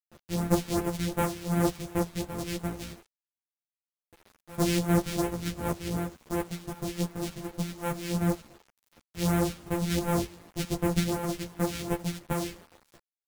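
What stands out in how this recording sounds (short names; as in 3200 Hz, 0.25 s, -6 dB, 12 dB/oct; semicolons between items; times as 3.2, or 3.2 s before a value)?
a buzz of ramps at a fixed pitch in blocks of 256 samples; phasing stages 2, 2.7 Hz, lowest notch 770–4500 Hz; a quantiser's noise floor 8-bit, dither none; a shimmering, thickened sound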